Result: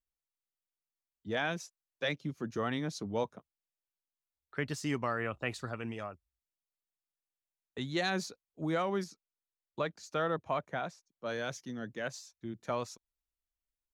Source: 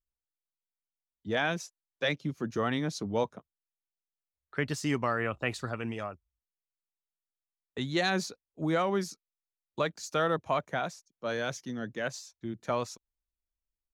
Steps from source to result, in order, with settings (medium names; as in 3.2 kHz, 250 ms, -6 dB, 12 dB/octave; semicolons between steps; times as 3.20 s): 9.04–11.26 s: treble shelf 5.6 kHz -10 dB; trim -4 dB